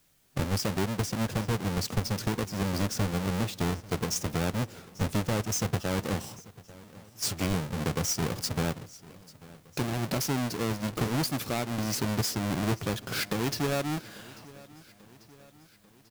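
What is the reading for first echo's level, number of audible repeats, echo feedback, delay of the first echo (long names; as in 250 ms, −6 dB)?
−21.0 dB, 3, 55%, 842 ms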